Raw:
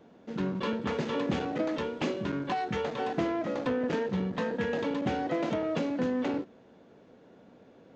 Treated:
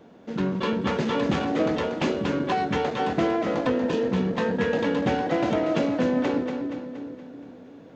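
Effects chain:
healed spectral selection 0:03.73–0:04.04, 510–2,400 Hz after
echo with a time of its own for lows and highs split 410 Hz, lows 363 ms, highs 236 ms, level −7 dB
level +5.5 dB

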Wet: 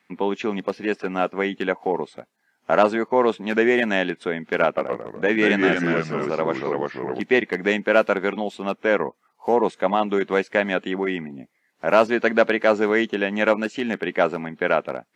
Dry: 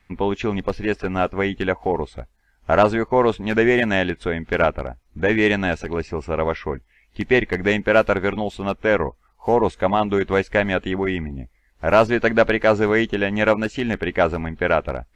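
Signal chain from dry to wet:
high-pass filter 180 Hz 24 dB per octave
0:04.65–0:07.20: delay with pitch and tempo change per echo 119 ms, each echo −2 semitones, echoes 2
level −1.5 dB

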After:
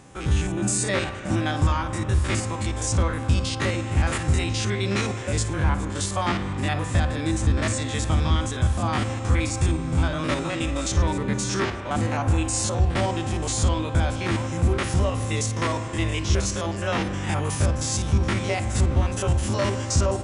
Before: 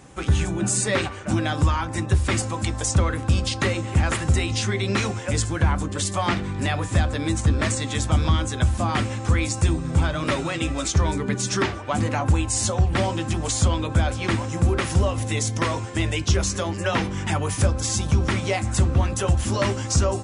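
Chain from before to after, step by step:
spectrum averaged block by block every 50 ms
spring reverb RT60 3.4 s, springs 34 ms, chirp 65 ms, DRR 10 dB

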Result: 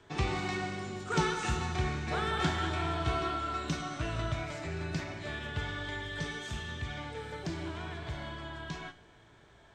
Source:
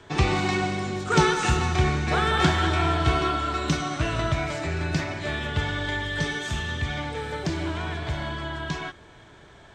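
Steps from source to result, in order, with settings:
tuned comb filter 56 Hz, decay 0.58 s, harmonics all, mix 60%
level −4 dB

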